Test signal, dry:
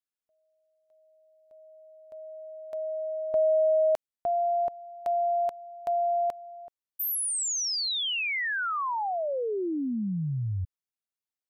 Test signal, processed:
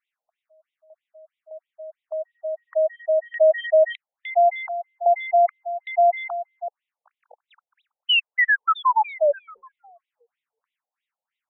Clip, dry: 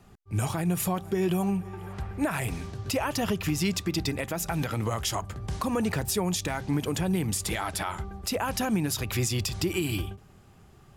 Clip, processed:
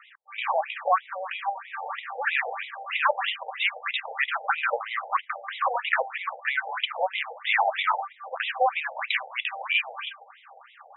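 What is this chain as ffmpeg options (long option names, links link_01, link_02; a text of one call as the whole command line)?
ffmpeg -i in.wav -filter_complex "[0:a]asplit=2[link_01][link_02];[link_02]highpass=frequency=720:poles=1,volume=17dB,asoftclip=type=tanh:threshold=-17dB[link_03];[link_01][link_03]amix=inputs=2:normalize=0,lowpass=frequency=3500:poles=1,volume=-6dB,afftfilt=real='re*between(b*sr/1024,610*pow(2800/610,0.5+0.5*sin(2*PI*3.1*pts/sr))/1.41,610*pow(2800/610,0.5+0.5*sin(2*PI*3.1*pts/sr))*1.41)':imag='im*between(b*sr/1024,610*pow(2800/610,0.5+0.5*sin(2*PI*3.1*pts/sr))/1.41,610*pow(2800/610,0.5+0.5*sin(2*PI*3.1*pts/sr))*1.41)':win_size=1024:overlap=0.75,volume=8dB" out.wav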